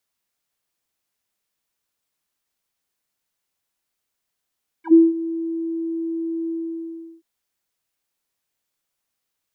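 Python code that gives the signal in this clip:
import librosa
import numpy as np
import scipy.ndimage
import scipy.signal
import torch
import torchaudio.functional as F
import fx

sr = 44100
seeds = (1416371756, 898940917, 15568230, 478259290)

y = fx.sub_voice(sr, note=64, wave='square', cutoff_hz=330.0, q=9.7, env_oct=3.0, env_s=0.07, attack_ms=88.0, decay_s=0.2, sustain_db=-17.5, release_s=0.73, note_s=1.65, slope=12)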